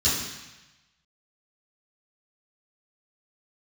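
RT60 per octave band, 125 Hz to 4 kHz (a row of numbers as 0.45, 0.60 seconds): 1.2, 1.0, 0.90, 1.1, 1.2, 1.1 seconds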